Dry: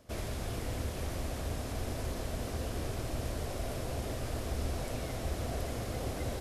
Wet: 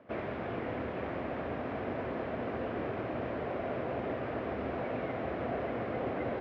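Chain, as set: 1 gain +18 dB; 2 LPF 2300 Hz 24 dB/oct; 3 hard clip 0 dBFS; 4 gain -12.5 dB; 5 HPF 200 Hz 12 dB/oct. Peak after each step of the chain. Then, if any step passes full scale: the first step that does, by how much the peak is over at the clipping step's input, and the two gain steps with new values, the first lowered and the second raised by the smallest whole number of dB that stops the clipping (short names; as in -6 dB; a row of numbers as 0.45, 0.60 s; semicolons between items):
-4.5, -5.0, -5.0, -17.5, -23.0 dBFS; no overload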